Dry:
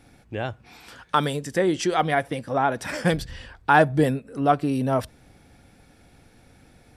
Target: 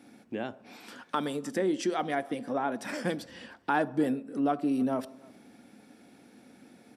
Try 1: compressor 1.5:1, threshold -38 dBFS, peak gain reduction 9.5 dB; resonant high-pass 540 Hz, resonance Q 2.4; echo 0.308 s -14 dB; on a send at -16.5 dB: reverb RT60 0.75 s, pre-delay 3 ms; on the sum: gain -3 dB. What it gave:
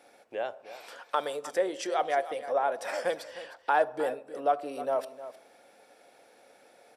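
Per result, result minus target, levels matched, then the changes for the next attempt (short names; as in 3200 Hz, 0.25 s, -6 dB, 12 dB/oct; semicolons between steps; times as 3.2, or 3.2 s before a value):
250 Hz band -13.5 dB; echo-to-direct +4 dB
change: resonant high-pass 240 Hz, resonance Q 2.4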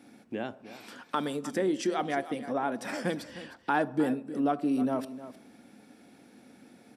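echo-to-direct +4 dB
change: echo 0.308 s -25 dB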